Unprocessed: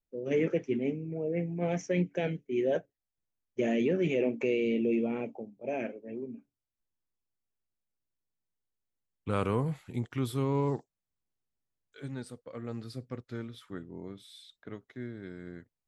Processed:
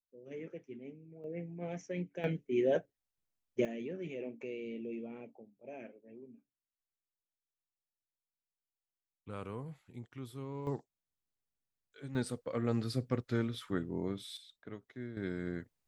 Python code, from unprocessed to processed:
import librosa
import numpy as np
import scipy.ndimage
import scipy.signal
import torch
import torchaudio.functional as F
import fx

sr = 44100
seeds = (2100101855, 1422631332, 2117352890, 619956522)

y = fx.gain(x, sr, db=fx.steps((0.0, -17.0), (1.24, -10.0), (2.24, -1.0), (3.65, -13.5), (10.67, -5.0), (12.15, 6.0), (14.37, -3.5), (15.17, 5.5)))